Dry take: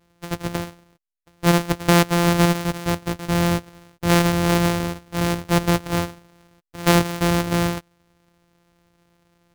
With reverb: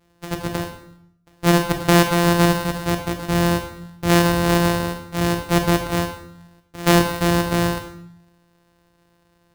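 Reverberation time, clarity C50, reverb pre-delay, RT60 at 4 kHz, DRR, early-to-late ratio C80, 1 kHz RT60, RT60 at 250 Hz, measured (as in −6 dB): 0.70 s, 7.5 dB, 25 ms, 0.60 s, 4.5 dB, 10.5 dB, 0.65 s, 0.80 s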